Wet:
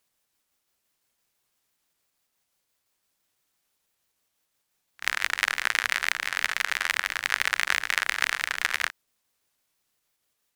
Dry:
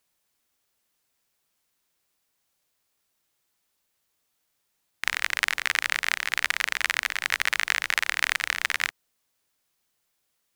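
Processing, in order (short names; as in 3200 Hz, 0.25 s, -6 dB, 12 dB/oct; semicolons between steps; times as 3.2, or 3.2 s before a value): trilling pitch shifter -2 st, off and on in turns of 84 ms; pre-echo 31 ms -14 dB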